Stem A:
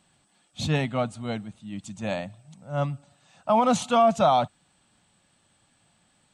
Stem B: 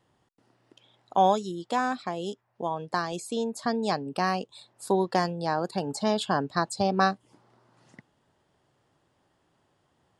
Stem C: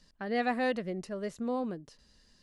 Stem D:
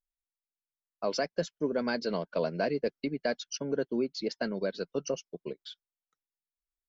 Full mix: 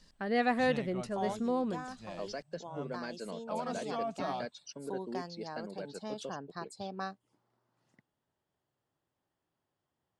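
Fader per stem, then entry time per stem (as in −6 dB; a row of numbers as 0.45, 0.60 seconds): −17.5, −16.0, +1.0, −10.5 decibels; 0.00, 0.00, 0.00, 1.15 seconds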